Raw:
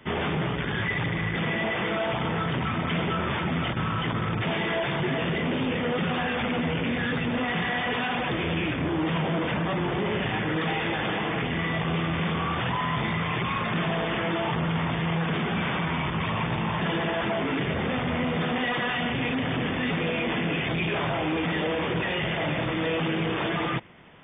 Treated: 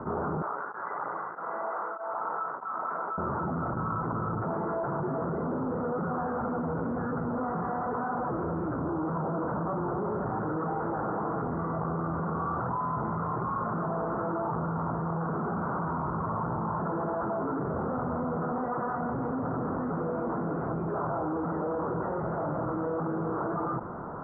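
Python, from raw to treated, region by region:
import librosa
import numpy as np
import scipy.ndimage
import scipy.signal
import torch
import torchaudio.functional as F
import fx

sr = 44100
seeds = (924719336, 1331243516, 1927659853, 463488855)

y = fx.chain(x, sr, fx.highpass(hz=820.0, slope=12),
    fx.tremolo_abs(hz=1.6), at=(0.42, 3.18))
y = scipy.signal.sosfilt(scipy.signal.cheby1(6, 1.0, 1400.0, 'lowpass', fs=sr, output='sos'), y)
y = fx.low_shelf(y, sr, hz=420.0, db=-6.0)
y = fx.env_flatten(y, sr, amount_pct=70)
y = y * 10.0 ** (-1.5 / 20.0)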